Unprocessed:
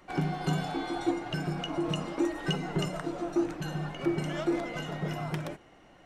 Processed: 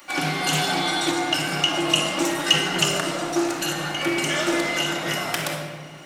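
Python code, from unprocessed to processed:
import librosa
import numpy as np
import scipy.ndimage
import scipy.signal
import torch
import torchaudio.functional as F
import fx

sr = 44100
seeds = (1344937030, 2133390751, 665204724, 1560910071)

y = fx.tilt_eq(x, sr, slope=4.5)
y = fx.room_shoebox(y, sr, seeds[0], volume_m3=1800.0, walls='mixed', distance_m=2.4)
y = fx.doppler_dist(y, sr, depth_ms=0.12)
y = y * librosa.db_to_amplitude(7.5)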